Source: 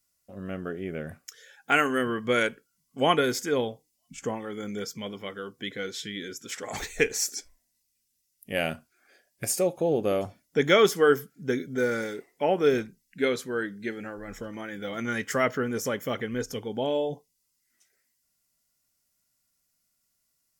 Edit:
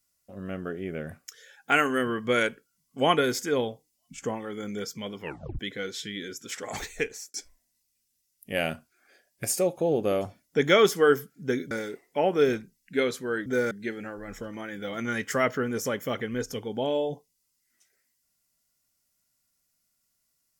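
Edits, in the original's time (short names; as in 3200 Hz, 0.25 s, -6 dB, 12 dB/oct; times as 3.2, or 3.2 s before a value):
5.21 tape stop 0.38 s
6.74–7.34 fade out
11.71–11.96 move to 13.71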